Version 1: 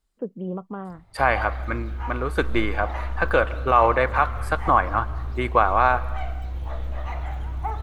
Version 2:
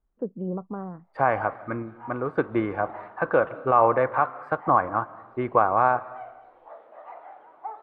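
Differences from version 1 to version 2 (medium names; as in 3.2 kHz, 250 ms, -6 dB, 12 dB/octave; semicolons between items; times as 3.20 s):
background: add ladder high-pass 420 Hz, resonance 25%; master: add low-pass 1.2 kHz 12 dB/octave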